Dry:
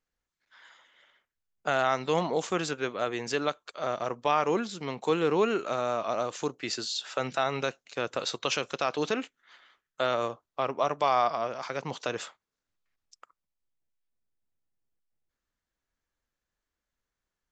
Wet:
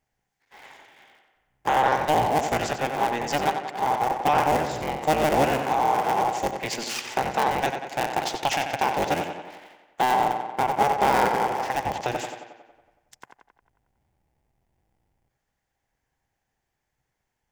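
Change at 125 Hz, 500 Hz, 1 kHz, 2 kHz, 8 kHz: +6.0, +2.5, +9.5, +6.0, +5.0 dB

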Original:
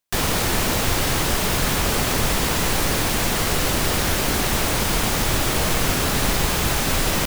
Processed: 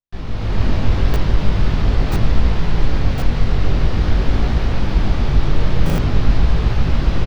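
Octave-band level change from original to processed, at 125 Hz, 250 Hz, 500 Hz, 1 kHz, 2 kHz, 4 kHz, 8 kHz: +8.0, +2.0, -2.0, -5.0, -7.0, -9.5, -21.5 dB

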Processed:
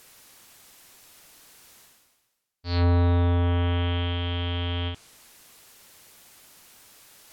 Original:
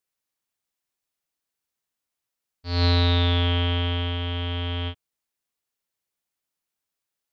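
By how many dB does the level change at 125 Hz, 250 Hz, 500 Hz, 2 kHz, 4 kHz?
0.0, 0.0, 0.0, -4.0, -7.0 dB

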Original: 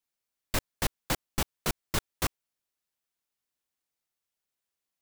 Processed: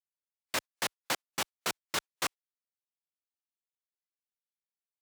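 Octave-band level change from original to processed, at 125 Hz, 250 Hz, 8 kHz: -16.5, -8.5, -1.0 dB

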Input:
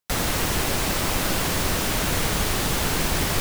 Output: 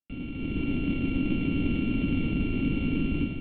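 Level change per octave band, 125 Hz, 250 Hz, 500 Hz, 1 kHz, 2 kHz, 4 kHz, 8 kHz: -2.5 dB, +3.5 dB, -10.0 dB, -20.5 dB, -11.0 dB, -15.5 dB, under -40 dB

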